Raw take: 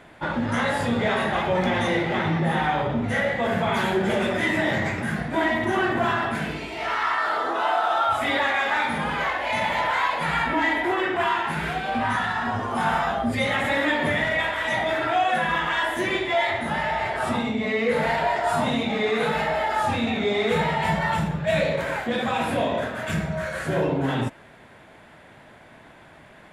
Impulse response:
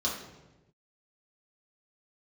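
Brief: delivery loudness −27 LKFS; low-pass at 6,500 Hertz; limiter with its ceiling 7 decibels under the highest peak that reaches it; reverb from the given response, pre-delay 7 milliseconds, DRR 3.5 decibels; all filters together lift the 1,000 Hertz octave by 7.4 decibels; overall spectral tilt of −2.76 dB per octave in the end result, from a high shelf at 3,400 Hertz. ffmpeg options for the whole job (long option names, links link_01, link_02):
-filter_complex "[0:a]lowpass=6500,equalizer=frequency=1000:width_type=o:gain=8.5,highshelf=frequency=3400:gain=8.5,alimiter=limit=-11.5dB:level=0:latency=1,asplit=2[link_01][link_02];[1:a]atrim=start_sample=2205,adelay=7[link_03];[link_02][link_03]afir=irnorm=-1:irlink=0,volume=-10.5dB[link_04];[link_01][link_04]amix=inputs=2:normalize=0,volume=-8.5dB"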